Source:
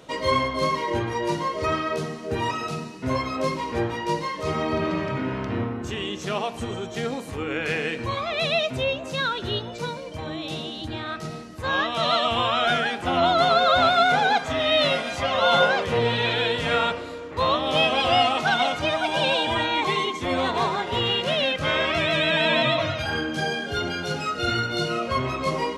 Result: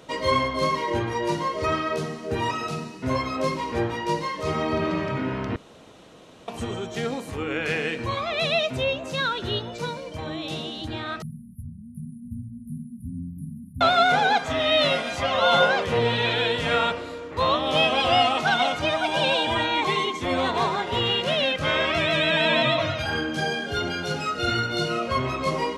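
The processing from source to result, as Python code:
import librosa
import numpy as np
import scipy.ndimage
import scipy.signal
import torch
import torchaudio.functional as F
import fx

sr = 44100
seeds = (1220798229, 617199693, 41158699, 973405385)

y = fx.brickwall_bandstop(x, sr, low_hz=260.0, high_hz=9300.0, at=(11.22, 13.81))
y = fx.edit(y, sr, fx.room_tone_fill(start_s=5.56, length_s=0.92), tone=tone)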